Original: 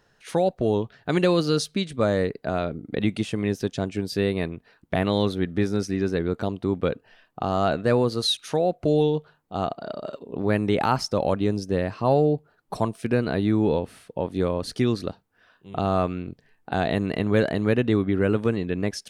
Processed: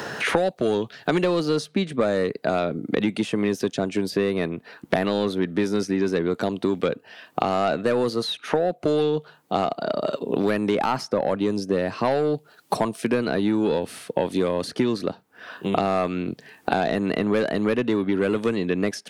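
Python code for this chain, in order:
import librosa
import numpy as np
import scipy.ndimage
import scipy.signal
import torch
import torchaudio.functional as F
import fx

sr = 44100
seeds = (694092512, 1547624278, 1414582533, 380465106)

y = scipy.signal.sosfilt(scipy.signal.butter(2, 180.0, 'highpass', fs=sr, output='sos'), x)
y = 10.0 ** (-15.0 / 20.0) * np.tanh(y / 10.0 ** (-15.0 / 20.0))
y = fx.band_squash(y, sr, depth_pct=100)
y = y * librosa.db_to_amplitude(2.5)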